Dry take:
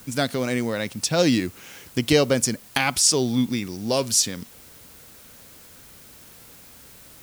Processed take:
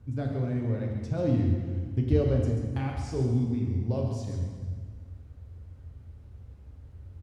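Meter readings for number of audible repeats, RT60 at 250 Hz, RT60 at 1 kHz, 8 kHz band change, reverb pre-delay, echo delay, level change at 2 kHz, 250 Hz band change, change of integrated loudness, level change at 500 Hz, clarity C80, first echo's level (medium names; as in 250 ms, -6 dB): 1, 1.9 s, 1.5 s, under -30 dB, 3 ms, 135 ms, -19.5 dB, -6.0 dB, -7.0 dB, -8.0 dB, 3.5 dB, -8.5 dB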